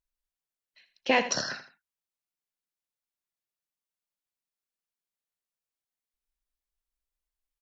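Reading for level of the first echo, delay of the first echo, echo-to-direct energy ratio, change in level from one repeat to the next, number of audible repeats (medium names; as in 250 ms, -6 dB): -12.0 dB, 81 ms, -11.5 dB, -10.0 dB, 2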